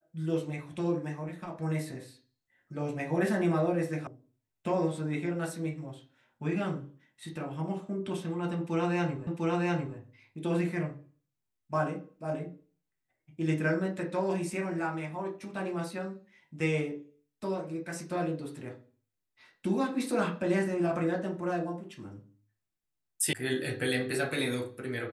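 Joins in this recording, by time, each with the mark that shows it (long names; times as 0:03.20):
0:04.07: cut off before it has died away
0:09.27: the same again, the last 0.7 s
0:23.33: cut off before it has died away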